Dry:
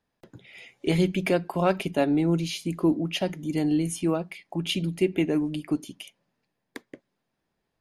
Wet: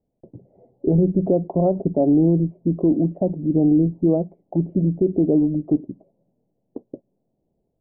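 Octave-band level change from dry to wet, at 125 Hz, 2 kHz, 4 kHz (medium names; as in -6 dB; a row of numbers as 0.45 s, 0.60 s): +7.5 dB, under -40 dB, under -40 dB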